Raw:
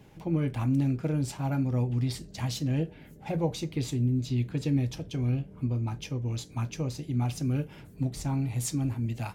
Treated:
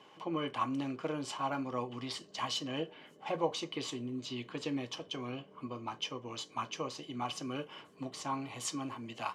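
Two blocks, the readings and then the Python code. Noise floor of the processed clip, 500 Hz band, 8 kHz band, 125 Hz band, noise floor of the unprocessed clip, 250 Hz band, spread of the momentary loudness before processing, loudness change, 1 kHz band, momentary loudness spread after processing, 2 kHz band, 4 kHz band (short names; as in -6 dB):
-59 dBFS, -2.0 dB, -4.0 dB, -20.0 dB, -50 dBFS, -9.0 dB, 6 LU, -8.0 dB, +4.5 dB, 8 LU, +0.5 dB, +3.0 dB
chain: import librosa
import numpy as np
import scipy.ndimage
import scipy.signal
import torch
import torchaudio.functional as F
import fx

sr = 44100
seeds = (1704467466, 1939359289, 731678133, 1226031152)

y = fx.bandpass_edges(x, sr, low_hz=420.0, high_hz=6400.0)
y = fx.small_body(y, sr, hz=(1100.0, 3000.0), ring_ms=35, db=16)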